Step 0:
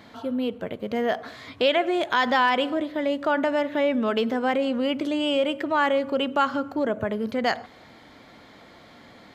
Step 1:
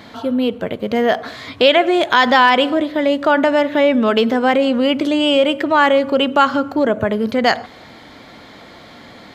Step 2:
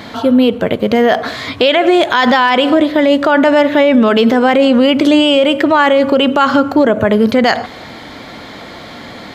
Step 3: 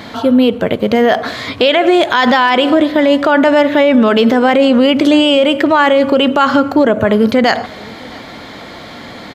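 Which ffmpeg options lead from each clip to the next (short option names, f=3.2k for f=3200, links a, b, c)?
-af "equalizer=f=4k:w=1.5:g=2,volume=9dB"
-af "alimiter=level_in=10dB:limit=-1dB:release=50:level=0:latency=1,volume=-1dB"
-af "aecho=1:1:665:0.0631"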